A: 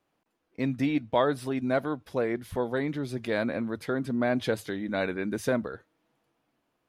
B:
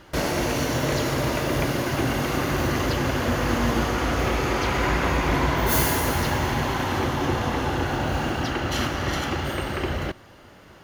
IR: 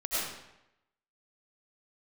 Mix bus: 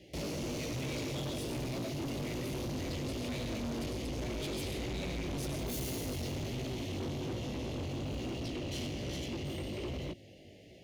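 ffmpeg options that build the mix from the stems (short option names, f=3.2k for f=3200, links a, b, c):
-filter_complex "[0:a]highpass=f=1.2k:t=q:w=4.9,volume=-0.5dB,asplit=2[a][b];[b]volume=-7dB[c];[1:a]highpass=68,flanger=delay=15.5:depth=6:speed=1.2,highshelf=f=9.5k:g=-9.5,volume=-1.5dB[d];[2:a]atrim=start_sample=2205[e];[c][e]afir=irnorm=-1:irlink=0[f];[a][d][f]amix=inputs=3:normalize=0,acrossover=split=500|3000[g][h][i];[h]acompressor=threshold=-44dB:ratio=2[j];[g][j][i]amix=inputs=3:normalize=0,asuperstop=centerf=1200:order=8:qfactor=0.84,asoftclip=type=tanh:threshold=-34.5dB"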